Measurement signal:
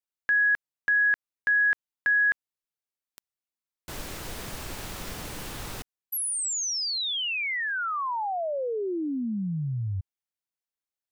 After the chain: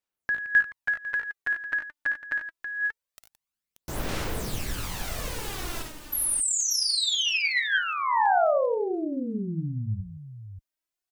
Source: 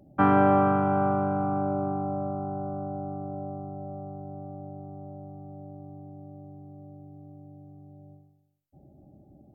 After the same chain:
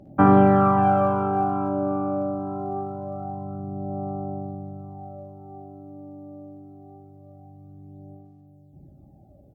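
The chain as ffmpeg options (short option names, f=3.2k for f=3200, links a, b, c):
-af "aecho=1:1:56|74|92|169|583:0.447|0.316|0.335|0.2|0.355,aphaser=in_gain=1:out_gain=1:delay=3.4:decay=0.54:speed=0.24:type=sinusoidal"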